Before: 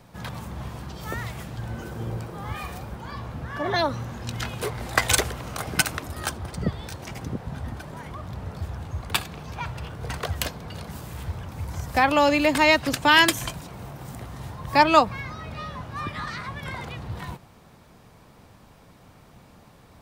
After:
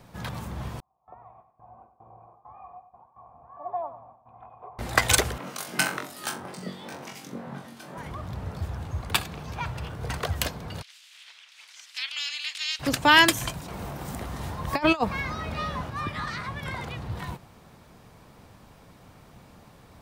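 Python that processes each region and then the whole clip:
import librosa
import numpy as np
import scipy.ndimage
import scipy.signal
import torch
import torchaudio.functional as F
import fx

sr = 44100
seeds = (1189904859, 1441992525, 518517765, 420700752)

y = fx.chain(x, sr, fx.gate_hold(open_db=-25.0, close_db=-31.0, hold_ms=71.0, range_db=-21, attack_ms=1.4, release_ms=100.0),
    fx.formant_cascade(vowel='a'),
    fx.echo_feedback(ms=96, feedback_pct=41, wet_db=-12.0), at=(0.8, 4.79))
y = fx.chain(y, sr, fx.highpass(hz=170.0, slope=24),
    fx.room_flutter(wall_m=3.7, rt60_s=0.31),
    fx.harmonic_tremolo(hz=1.9, depth_pct=70, crossover_hz=2500.0), at=(5.38, 7.98))
y = fx.spec_clip(y, sr, under_db=27, at=(10.81, 12.79), fade=0.02)
y = fx.ladder_bandpass(y, sr, hz=3700.0, resonance_pct=30, at=(10.81, 12.79), fade=0.02)
y = fx.chain(y, sr, fx.peak_eq(hz=120.0, db=-13.5, octaves=0.22),
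    fx.over_compress(threshold_db=-22.0, ratio=-0.5), at=(13.68, 15.9))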